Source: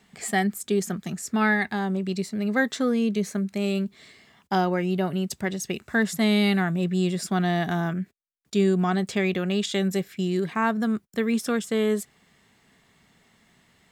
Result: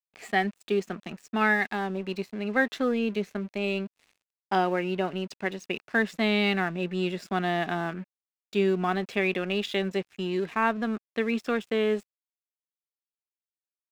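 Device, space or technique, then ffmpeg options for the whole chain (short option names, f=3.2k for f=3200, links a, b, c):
pocket radio on a weak battery: -af "highpass=260,lowpass=3.7k,aeval=exprs='sgn(val(0))*max(abs(val(0))-0.00422,0)':c=same,equalizer=f=2.6k:t=o:w=0.22:g=7"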